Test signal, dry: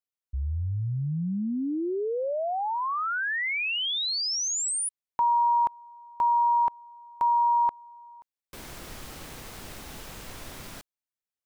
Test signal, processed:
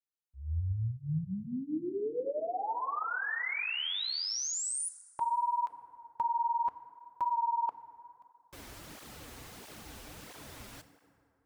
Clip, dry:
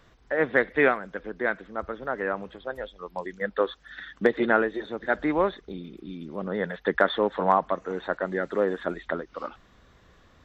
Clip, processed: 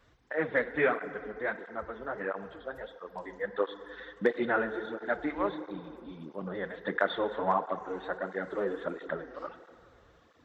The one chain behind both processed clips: FDN reverb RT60 2.7 s, low-frequency decay 0.8×, high-frequency decay 0.45×, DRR 10 dB; dynamic EQ 270 Hz, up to -3 dB, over -40 dBFS, Q 4.1; tape flanging out of phase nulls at 1.5 Hz, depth 7 ms; gain -3.5 dB

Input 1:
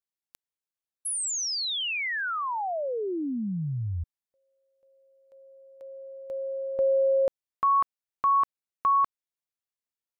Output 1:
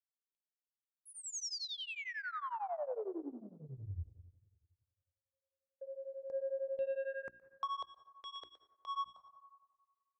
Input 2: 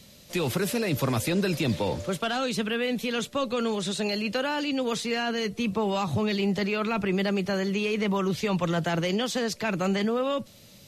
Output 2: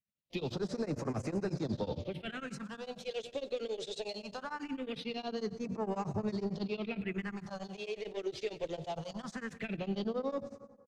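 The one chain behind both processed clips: gate -46 dBFS, range -40 dB; low shelf 86 Hz -7 dB; notches 60/120/180/240/300/360 Hz; in parallel at -1.5 dB: compressor, threshold -31 dBFS; on the sum: soft clip -22 dBFS; phaser stages 4, 0.21 Hz, lowest notch 180–3400 Hz; air absorption 100 m; on a send: feedback echo 0.118 s, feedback 27%, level -16.5 dB; on the sum: plate-style reverb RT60 1.5 s, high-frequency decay 0.35×, pre-delay 0.11 s, DRR 15.5 dB; beating tremolo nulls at 11 Hz; gain -5.5 dB

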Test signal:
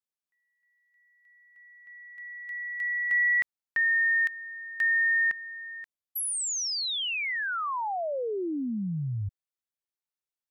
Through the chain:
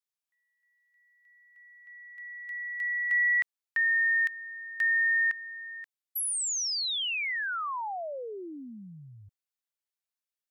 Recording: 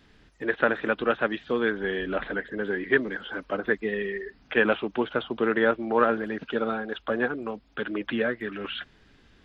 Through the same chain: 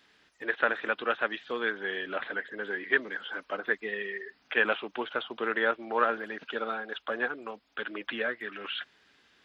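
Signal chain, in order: HPF 970 Hz 6 dB/oct

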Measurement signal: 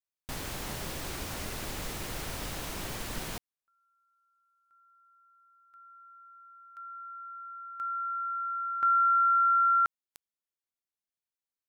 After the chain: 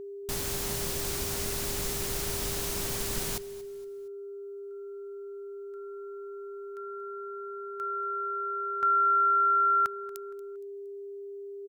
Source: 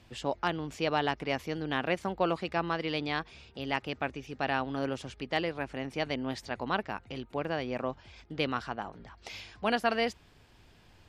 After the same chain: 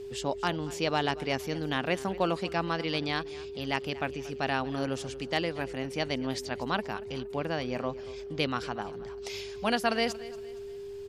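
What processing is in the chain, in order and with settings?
tone controls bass +3 dB, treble +9 dB; whine 400 Hz -38 dBFS; on a send: feedback echo 0.233 s, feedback 38%, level -18.5 dB

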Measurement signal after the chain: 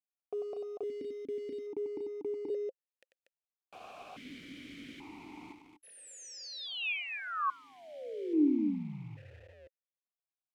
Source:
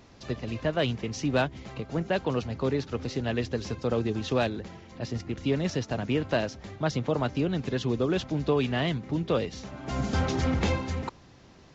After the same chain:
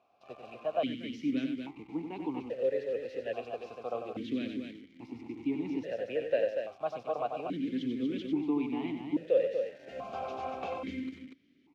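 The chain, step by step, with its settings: dynamic EQ 510 Hz, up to +4 dB, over -36 dBFS, Q 2; loudspeakers at several distances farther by 32 m -7 dB, 82 m -6 dB; in parallel at -3 dB: requantised 6-bit, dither none; on the sum: vowel sequencer 1.2 Hz; gain -3 dB

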